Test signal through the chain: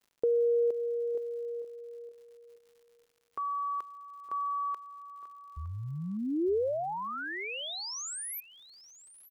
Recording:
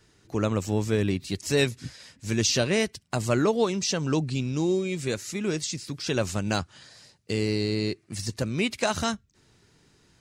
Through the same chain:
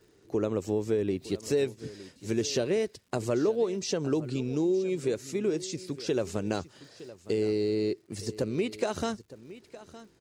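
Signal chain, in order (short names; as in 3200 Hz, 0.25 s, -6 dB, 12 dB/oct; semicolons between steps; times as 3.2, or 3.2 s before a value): bell 410 Hz +13 dB 1.3 oct; compressor 3:1, threshold -19 dBFS; crackle 150/s -48 dBFS; on a send: echo 0.913 s -17 dB; on the sum: gain -6.5 dB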